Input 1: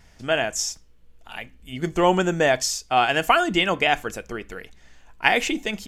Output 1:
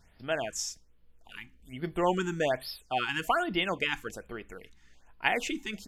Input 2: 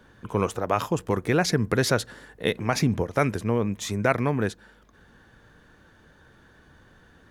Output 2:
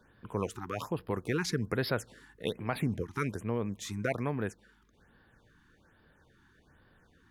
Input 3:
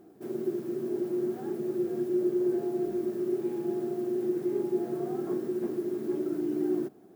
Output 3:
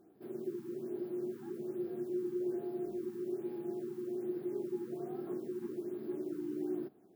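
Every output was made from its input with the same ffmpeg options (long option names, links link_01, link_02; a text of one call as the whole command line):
ffmpeg -i in.wav -af "afftfilt=real='re*(1-between(b*sr/1024,530*pow(7700/530,0.5+0.5*sin(2*PI*1.2*pts/sr))/1.41,530*pow(7700/530,0.5+0.5*sin(2*PI*1.2*pts/sr))*1.41))':imag='im*(1-between(b*sr/1024,530*pow(7700/530,0.5+0.5*sin(2*PI*1.2*pts/sr))/1.41,530*pow(7700/530,0.5+0.5*sin(2*PI*1.2*pts/sr))*1.41))':win_size=1024:overlap=0.75,volume=-8.5dB" out.wav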